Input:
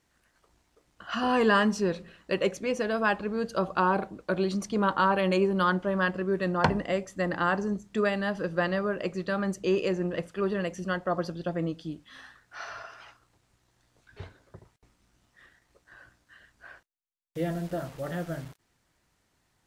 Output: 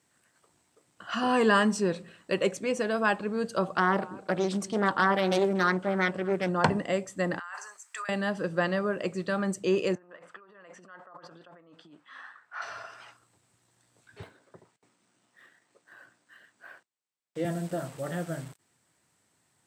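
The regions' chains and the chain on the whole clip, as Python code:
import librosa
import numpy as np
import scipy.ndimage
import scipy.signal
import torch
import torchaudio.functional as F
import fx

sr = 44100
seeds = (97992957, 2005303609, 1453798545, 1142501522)

y = fx.chain(x, sr, fx.echo_single(ms=236, db=-21.5),
    fx.doppler_dist(depth_ms=0.42), at=(3.75, 6.49))
y = fx.chain(y, sr, fx.highpass(hz=1100.0, slope=24),
    fx.over_compress(threshold_db=-38.0, ratio=-1.0),
    fx.peak_eq(hz=3500.0, db=-9.5, octaves=0.64), at=(7.39, 8.09))
y = fx.chain(y, sr, fx.over_compress(threshold_db=-39.0, ratio=-1.0),
    fx.bandpass_q(hz=1200.0, q=1.7), at=(9.95, 12.62))
y = fx.chain(y, sr, fx.highpass(hz=200.0, slope=12),
    fx.resample_linear(factor=3), at=(14.22, 17.45))
y = scipy.signal.sosfilt(scipy.signal.butter(4, 97.0, 'highpass', fs=sr, output='sos'), y)
y = fx.peak_eq(y, sr, hz=8100.0, db=13.0, octaves=0.22)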